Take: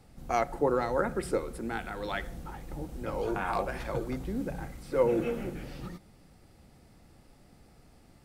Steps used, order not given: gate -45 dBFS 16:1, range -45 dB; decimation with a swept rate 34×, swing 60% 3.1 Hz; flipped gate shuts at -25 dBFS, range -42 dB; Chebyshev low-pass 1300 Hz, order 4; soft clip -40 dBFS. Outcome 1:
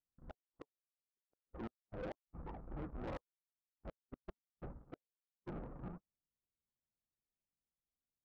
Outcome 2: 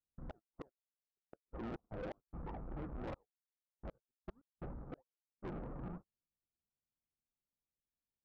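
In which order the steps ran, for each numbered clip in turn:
decimation with a swept rate > Chebyshev low-pass > flipped gate > soft clip > gate; decimation with a swept rate > flipped gate > gate > Chebyshev low-pass > soft clip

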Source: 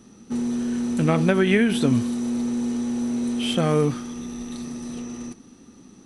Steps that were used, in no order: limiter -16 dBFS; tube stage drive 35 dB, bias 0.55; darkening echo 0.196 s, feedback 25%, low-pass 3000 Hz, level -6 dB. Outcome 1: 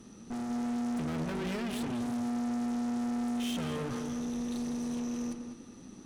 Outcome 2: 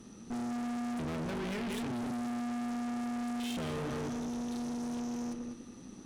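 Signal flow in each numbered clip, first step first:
limiter > tube stage > darkening echo; darkening echo > limiter > tube stage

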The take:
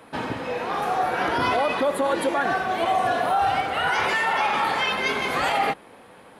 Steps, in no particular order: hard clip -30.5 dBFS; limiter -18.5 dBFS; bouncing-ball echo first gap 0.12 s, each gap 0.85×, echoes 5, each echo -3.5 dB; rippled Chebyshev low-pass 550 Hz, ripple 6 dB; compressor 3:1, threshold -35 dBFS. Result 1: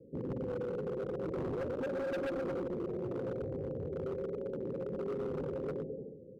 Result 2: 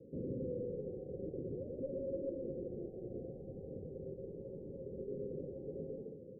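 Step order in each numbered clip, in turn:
rippled Chebyshev low-pass > limiter > bouncing-ball echo > hard clip > compressor; bouncing-ball echo > limiter > hard clip > rippled Chebyshev low-pass > compressor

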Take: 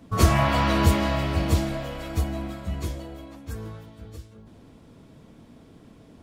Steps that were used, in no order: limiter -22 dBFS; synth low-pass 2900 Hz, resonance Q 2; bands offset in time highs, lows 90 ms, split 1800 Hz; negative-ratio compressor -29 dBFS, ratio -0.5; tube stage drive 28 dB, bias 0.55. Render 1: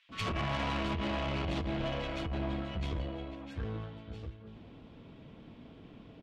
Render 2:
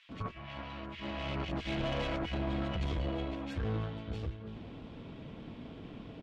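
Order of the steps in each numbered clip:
bands offset in time > limiter > negative-ratio compressor > synth low-pass > tube stage; synth low-pass > negative-ratio compressor > bands offset in time > limiter > tube stage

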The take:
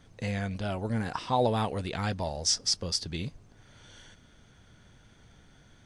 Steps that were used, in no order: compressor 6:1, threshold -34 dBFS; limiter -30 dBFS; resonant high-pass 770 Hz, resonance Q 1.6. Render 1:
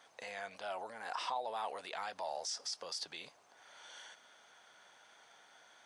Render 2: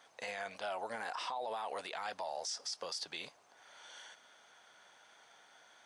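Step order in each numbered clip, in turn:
limiter > compressor > resonant high-pass; resonant high-pass > limiter > compressor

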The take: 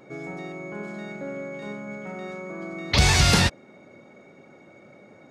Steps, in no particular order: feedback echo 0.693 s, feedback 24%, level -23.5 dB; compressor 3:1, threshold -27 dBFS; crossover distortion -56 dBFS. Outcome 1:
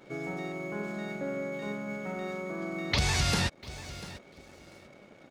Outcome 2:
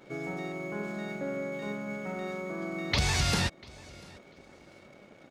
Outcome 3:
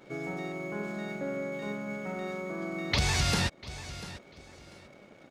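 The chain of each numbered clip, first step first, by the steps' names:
feedback echo > crossover distortion > compressor; crossover distortion > compressor > feedback echo; crossover distortion > feedback echo > compressor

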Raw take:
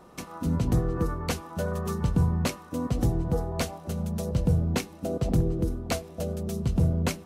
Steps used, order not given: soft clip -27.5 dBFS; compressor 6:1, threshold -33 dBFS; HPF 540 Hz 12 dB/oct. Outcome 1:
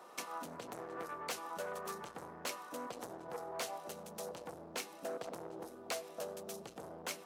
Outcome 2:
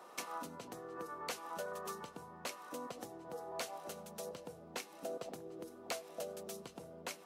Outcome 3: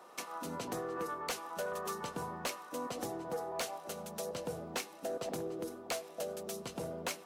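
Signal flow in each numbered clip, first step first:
soft clip > compressor > HPF; compressor > HPF > soft clip; HPF > soft clip > compressor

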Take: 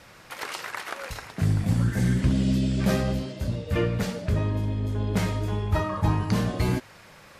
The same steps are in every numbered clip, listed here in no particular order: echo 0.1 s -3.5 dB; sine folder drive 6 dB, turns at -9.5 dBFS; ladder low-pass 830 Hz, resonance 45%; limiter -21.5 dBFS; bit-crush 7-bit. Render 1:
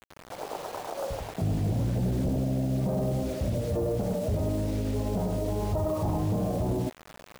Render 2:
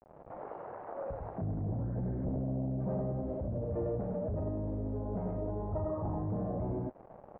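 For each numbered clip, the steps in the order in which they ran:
echo > sine folder > ladder low-pass > bit-crush > limiter; echo > bit-crush > sine folder > limiter > ladder low-pass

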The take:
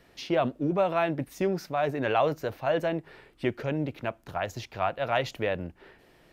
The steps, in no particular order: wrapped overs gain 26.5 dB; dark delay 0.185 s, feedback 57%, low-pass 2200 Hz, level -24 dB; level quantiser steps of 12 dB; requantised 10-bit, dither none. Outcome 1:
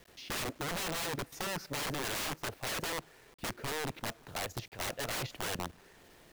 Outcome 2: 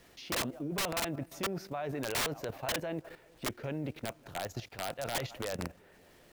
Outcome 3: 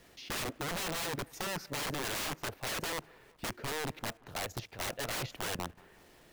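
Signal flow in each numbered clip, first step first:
wrapped overs > dark delay > level quantiser > requantised; dark delay > requantised > level quantiser > wrapped overs; wrapped overs > requantised > level quantiser > dark delay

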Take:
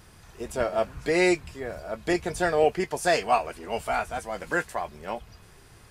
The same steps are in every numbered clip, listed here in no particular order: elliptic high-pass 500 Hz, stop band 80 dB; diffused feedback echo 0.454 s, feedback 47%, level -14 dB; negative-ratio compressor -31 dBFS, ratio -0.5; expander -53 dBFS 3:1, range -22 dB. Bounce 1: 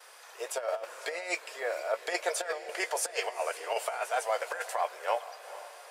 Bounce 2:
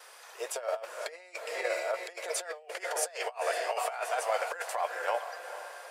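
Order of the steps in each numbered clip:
expander > elliptic high-pass > negative-ratio compressor > diffused feedback echo; diffused feedback echo > negative-ratio compressor > expander > elliptic high-pass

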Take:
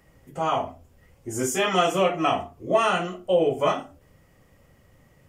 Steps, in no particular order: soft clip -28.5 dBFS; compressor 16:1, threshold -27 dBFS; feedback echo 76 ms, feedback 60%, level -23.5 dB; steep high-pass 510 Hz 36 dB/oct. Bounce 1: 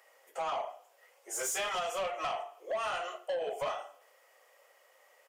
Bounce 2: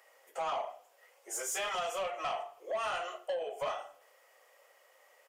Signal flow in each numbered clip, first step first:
steep high-pass > compressor > feedback echo > soft clip; compressor > steep high-pass > soft clip > feedback echo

